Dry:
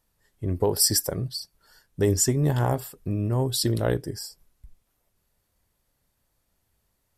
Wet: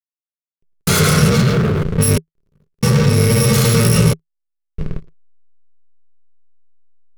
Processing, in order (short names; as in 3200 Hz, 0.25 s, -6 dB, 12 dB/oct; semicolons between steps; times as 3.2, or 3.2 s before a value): FFT order left unsorted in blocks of 128 samples; on a send: echo with dull and thin repeats by turns 0.21 s, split 1500 Hz, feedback 62%, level -9 dB; on the sum: reverb RT60 0.80 s, pre-delay 83 ms, DRR -3.5 dB; in parallel at -9 dB: Schmitt trigger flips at -34 dBFS; on the sum: harmonic-percussive split harmonic +4 dB; low-pass opened by the level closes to 1300 Hz, open at -15 dBFS; sample leveller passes 3; compressor 16:1, threshold -11 dBFS, peak gain reduction 4.5 dB; bell 180 Hz +3.5 dB 0.61 oct; step gate "x...xxxxx" 69 bpm -24 dB; backlash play -25.5 dBFS; thirty-one-band EQ 160 Hz +9 dB, 400 Hz +12 dB, 800 Hz -10 dB; gain -1.5 dB